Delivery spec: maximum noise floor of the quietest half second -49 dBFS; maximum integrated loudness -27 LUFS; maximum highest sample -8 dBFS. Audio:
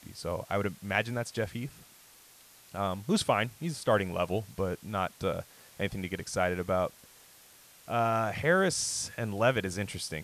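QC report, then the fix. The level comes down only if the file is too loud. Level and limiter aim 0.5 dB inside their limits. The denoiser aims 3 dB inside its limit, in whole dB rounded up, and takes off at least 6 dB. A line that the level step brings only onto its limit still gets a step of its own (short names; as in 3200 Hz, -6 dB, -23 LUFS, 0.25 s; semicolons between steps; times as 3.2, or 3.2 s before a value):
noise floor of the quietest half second -57 dBFS: OK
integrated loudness -31.0 LUFS: OK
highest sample -11.5 dBFS: OK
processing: none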